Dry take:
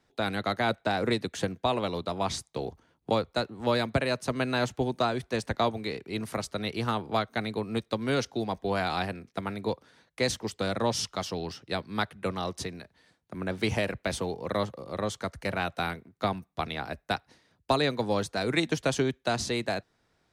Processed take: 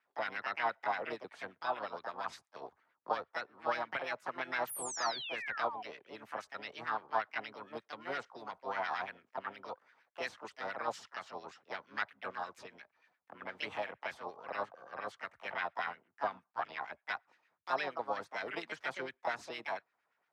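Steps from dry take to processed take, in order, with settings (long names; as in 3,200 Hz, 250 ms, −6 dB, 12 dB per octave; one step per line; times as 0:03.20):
auto-filter band-pass sine 8.6 Hz 750–1,800 Hz
sound drawn into the spectrogram fall, 0:04.69–0:05.83, 700–11,000 Hz −41 dBFS
pitch-shifted copies added +5 semitones −3 dB
level −3 dB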